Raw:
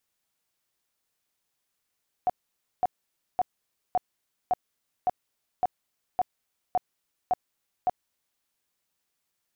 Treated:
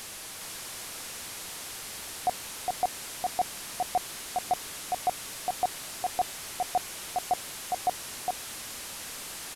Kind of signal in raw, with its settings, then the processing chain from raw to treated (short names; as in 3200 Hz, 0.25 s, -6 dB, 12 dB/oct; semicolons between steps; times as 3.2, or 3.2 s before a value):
tone bursts 731 Hz, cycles 19, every 0.56 s, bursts 11, -19.5 dBFS
delta modulation 64 kbps, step -34 dBFS; echo 0.41 s -3.5 dB